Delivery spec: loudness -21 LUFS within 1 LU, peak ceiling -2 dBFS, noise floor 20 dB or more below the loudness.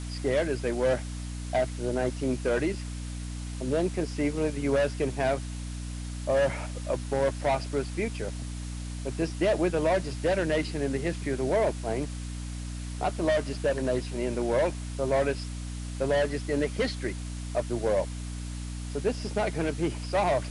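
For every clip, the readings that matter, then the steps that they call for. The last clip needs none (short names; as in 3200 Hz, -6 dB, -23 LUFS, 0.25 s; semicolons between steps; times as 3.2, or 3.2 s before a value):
hum 60 Hz; harmonics up to 300 Hz; hum level -33 dBFS; noise floor -36 dBFS; noise floor target -50 dBFS; loudness -29.5 LUFS; peak -14.5 dBFS; loudness target -21.0 LUFS
-> notches 60/120/180/240/300 Hz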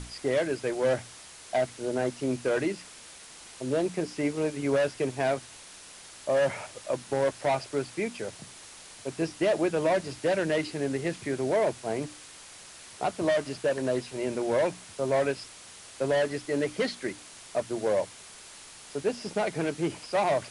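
hum none; noise floor -48 dBFS; noise floor target -50 dBFS
-> noise print and reduce 6 dB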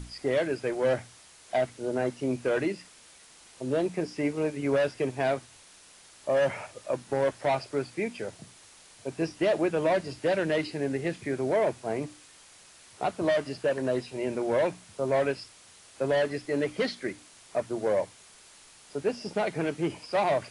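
noise floor -54 dBFS; loudness -29.5 LUFS; peak -15.0 dBFS; loudness target -21.0 LUFS
-> gain +8.5 dB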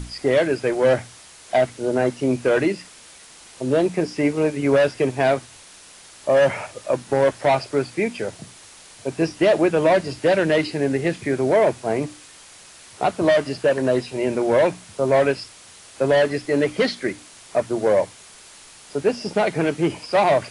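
loudness -21.0 LUFS; peak -6.5 dBFS; noise floor -46 dBFS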